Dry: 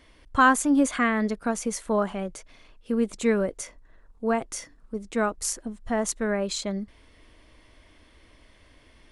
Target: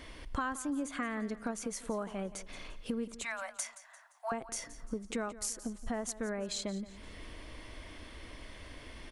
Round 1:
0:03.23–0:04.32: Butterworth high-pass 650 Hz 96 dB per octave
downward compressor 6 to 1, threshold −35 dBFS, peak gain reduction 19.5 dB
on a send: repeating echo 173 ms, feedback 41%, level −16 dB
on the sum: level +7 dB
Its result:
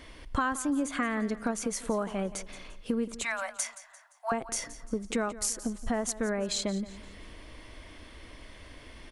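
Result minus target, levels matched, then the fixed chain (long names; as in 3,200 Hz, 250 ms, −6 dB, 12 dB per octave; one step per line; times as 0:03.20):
downward compressor: peak gain reduction −6 dB
0:03.23–0:04.32: Butterworth high-pass 650 Hz 96 dB per octave
downward compressor 6 to 1, threshold −42.5 dBFS, peak gain reduction 26 dB
on a send: repeating echo 173 ms, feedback 41%, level −16 dB
on the sum: level +7 dB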